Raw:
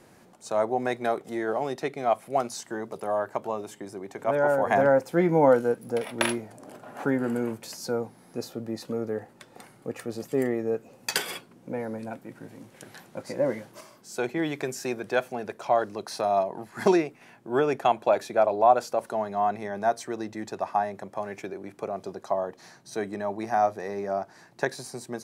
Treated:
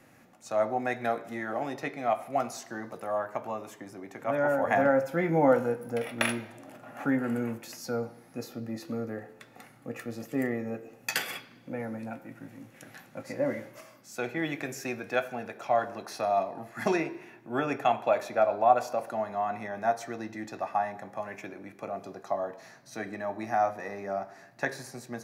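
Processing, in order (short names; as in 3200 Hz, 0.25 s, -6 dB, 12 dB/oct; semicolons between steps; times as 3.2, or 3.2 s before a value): bell 7900 Hz -13 dB 0.66 oct; reverb RT60 1.0 s, pre-delay 3 ms, DRR 8 dB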